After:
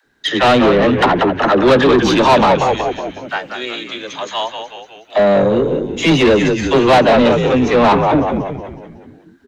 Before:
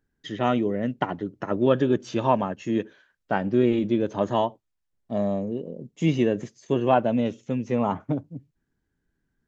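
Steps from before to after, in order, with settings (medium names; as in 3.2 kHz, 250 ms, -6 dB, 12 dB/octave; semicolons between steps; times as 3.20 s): 2.52–5.15 s: differentiator; phase dispersion lows, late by 55 ms, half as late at 400 Hz; frequency-shifting echo 185 ms, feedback 54%, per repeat -78 Hz, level -7.5 dB; overdrive pedal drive 26 dB, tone 3.3 kHz, clips at -7 dBFS; peaking EQ 3.9 kHz +8.5 dB 0.2 oct; trim +4.5 dB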